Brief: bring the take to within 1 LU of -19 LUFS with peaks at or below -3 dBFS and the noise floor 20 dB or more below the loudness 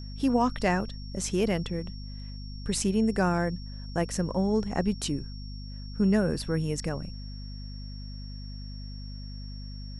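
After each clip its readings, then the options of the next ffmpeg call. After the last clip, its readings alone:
hum 50 Hz; harmonics up to 250 Hz; hum level -37 dBFS; steady tone 5500 Hz; tone level -48 dBFS; loudness -28.5 LUFS; peak -11.0 dBFS; loudness target -19.0 LUFS
-> -af "bandreject=f=50:t=h:w=4,bandreject=f=100:t=h:w=4,bandreject=f=150:t=h:w=4,bandreject=f=200:t=h:w=4,bandreject=f=250:t=h:w=4"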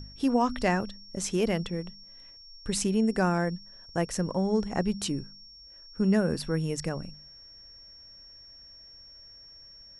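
hum none; steady tone 5500 Hz; tone level -48 dBFS
-> -af "bandreject=f=5.5k:w=30"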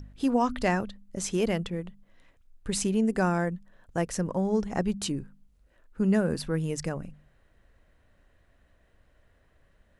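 steady tone none; loudness -29.0 LUFS; peak -11.5 dBFS; loudness target -19.0 LUFS
-> -af "volume=10dB,alimiter=limit=-3dB:level=0:latency=1"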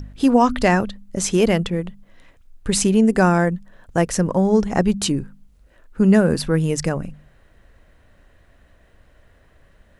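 loudness -19.0 LUFS; peak -3.0 dBFS; noise floor -55 dBFS

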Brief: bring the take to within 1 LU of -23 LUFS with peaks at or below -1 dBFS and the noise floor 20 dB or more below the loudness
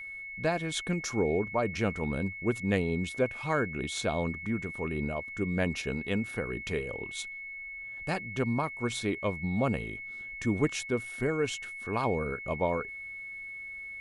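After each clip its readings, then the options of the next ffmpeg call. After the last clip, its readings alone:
steady tone 2200 Hz; tone level -39 dBFS; loudness -32.0 LUFS; peak -13.5 dBFS; loudness target -23.0 LUFS
-> -af "bandreject=f=2.2k:w=30"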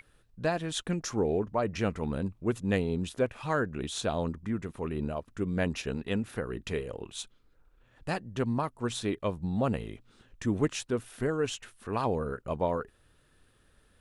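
steady tone none; loudness -32.5 LUFS; peak -14.0 dBFS; loudness target -23.0 LUFS
-> -af "volume=9.5dB"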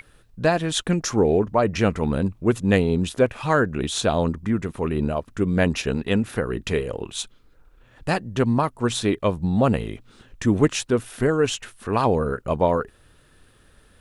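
loudness -23.0 LUFS; peak -4.5 dBFS; noise floor -56 dBFS

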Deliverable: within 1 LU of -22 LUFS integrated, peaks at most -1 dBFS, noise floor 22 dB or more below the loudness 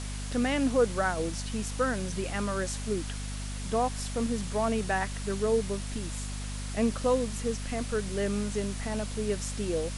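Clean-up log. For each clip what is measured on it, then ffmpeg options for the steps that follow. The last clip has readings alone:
hum 50 Hz; harmonics up to 250 Hz; hum level -34 dBFS; noise floor -36 dBFS; noise floor target -53 dBFS; loudness -30.5 LUFS; peak -14.5 dBFS; loudness target -22.0 LUFS
-> -af "bandreject=f=50:t=h:w=4,bandreject=f=100:t=h:w=4,bandreject=f=150:t=h:w=4,bandreject=f=200:t=h:w=4,bandreject=f=250:t=h:w=4"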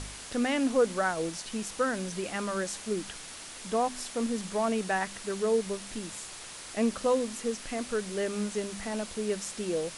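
hum none; noise floor -44 dBFS; noise floor target -54 dBFS
-> -af "afftdn=nr=10:nf=-44"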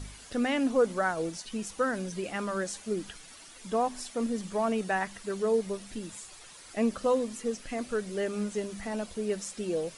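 noise floor -50 dBFS; noise floor target -54 dBFS
-> -af "afftdn=nr=6:nf=-50"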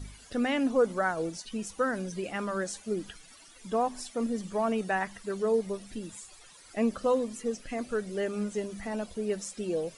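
noise floor -54 dBFS; loudness -31.5 LUFS; peak -15.5 dBFS; loudness target -22.0 LUFS
-> -af "volume=9.5dB"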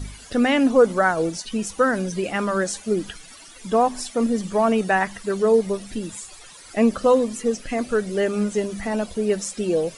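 loudness -22.0 LUFS; peak -6.0 dBFS; noise floor -44 dBFS

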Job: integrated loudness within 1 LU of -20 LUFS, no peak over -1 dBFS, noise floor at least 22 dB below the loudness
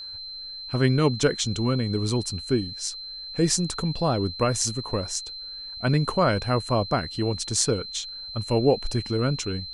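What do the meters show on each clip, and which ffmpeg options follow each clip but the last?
steady tone 4100 Hz; tone level -35 dBFS; loudness -25.5 LUFS; peak -4.0 dBFS; loudness target -20.0 LUFS
-> -af "bandreject=f=4.1k:w=30"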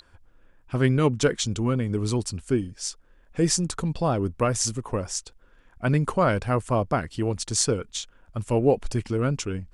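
steady tone none; loudness -25.5 LUFS; peak -4.5 dBFS; loudness target -20.0 LUFS
-> -af "volume=5.5dB,alimiter=limit=-1dB:level=0:latency=1"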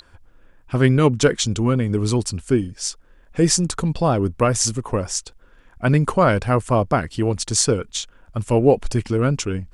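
loudness -20.0 LUFS; peak -1.0 dBFS; noise floor -52 dBFS

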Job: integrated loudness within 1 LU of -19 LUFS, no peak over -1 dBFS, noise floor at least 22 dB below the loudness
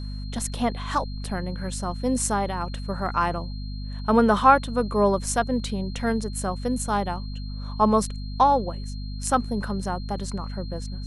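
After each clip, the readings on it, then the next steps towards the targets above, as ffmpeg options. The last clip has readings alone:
hum 50 Hz; harmonics up to 250 Hz; hum level -30 dBFS; steady tone 4200 Hz; tone level -45 dBFS; loudness -25.0 LUFS; peak -3.5 dBFS; loudness target -19.0 LUFS
-> -af "bandreject=f=50:t=h:w=6,bandreject=f=100:t=h:w=6,bandreject=f=150:t=h:w=6,bandreject=f=200:t=h:w=6,bandreject=f=250:t=h:w=6"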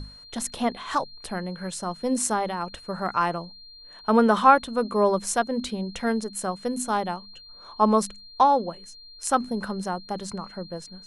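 hum none; steady tone 4200 Hz; tone level -45 dBFS
-> -af "bandreject=f=4.2k:w=30"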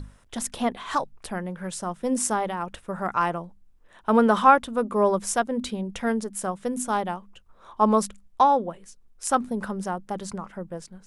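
steady tone none; loudness -25.0 LUFS; peak -4.0 dBFS; loudness target -19.0 LUFS
-> -af "volume=6dB,alimiter=limit=-1dB:level=0:latency=1"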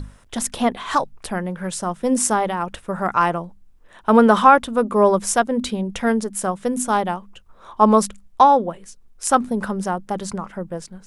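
loudness -19.5 LUFS; peak -1.0 dBFS; noise floor -49 dBFS

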